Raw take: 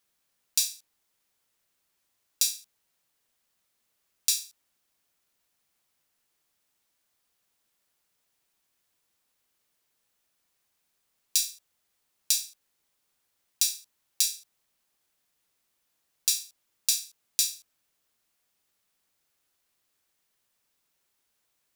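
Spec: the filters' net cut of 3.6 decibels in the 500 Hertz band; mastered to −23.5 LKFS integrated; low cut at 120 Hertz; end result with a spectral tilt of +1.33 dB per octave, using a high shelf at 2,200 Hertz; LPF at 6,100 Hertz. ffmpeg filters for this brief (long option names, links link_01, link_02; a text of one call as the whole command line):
ffmpeg -i in.wav -af "highpass=120,lowpass=6100,equalizer=frequency=500:width_type=o:gain=-4,highshelf=frequency=2200:gain=-8.5,volume=16dB" out.wav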